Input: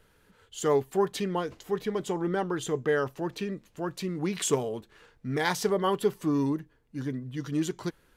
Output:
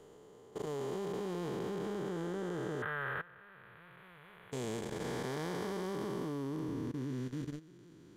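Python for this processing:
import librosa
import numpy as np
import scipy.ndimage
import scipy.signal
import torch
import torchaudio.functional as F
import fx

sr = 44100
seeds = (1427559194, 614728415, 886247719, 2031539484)

y = fx.spec_blur(x, sr, span_ms=1050.0)
y = fx.curve_eq(y, sr, hz=(110.0, 290.0, 540.0, 770.0, 1500.0, 3600.0, 5300.0, 7600.0, 11000.0), db=(0, -19, -4, -1, 13, -2, -26, -29, -1), at=(2.82, 4.52))
y = fx.level_steps(y, sr, step_db=19)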